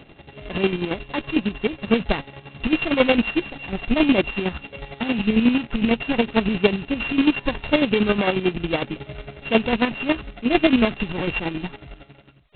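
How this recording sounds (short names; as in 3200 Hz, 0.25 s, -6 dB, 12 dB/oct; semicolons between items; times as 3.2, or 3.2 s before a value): a buzz of ramps at a fixed pitch in blocks of 16 samples; chopped level 11 Hz, depth 60%, duty 35%; G.726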